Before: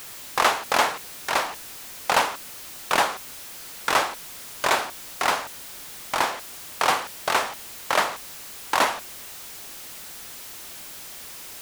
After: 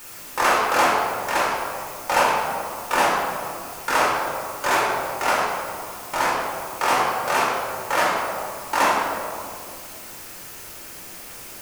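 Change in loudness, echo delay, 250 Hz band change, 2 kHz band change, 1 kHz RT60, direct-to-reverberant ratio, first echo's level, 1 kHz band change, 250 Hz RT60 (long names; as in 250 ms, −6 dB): +2.5 dB, no echo audible, +6.0 dB, +3.0 dB, 2.0 s, −6.0 dB, no echo audible, +4.0 dB, 2.5 s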